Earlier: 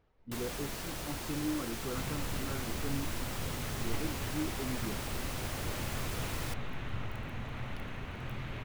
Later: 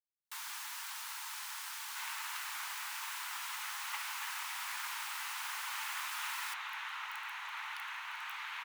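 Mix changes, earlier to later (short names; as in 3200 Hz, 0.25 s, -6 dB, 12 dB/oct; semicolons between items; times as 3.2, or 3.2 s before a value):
speech: muted; second sound +6.0 dB; master: add Chebyshev high-pass 890 Hz, order 5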